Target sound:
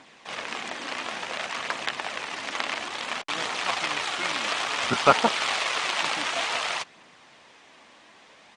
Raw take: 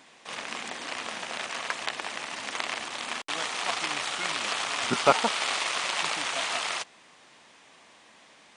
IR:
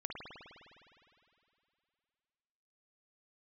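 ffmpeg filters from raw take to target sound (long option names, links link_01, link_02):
-filter_complex "[0:a]adynamicsmooth=sensitivity=0.5:basefreq=8000,aphaser=in_gain=1:out_gain=1:delay=3.8:decay=0.27:speed=0.57:type=triangular,asplit=2[link_01][link_02];[link_02]asetrate=33038,aresample=44100,atempo=1.33484,volume=-13dB[link_03];[link_01][link_03]amix=inputs=2:normalize=0,volume=2.5dB"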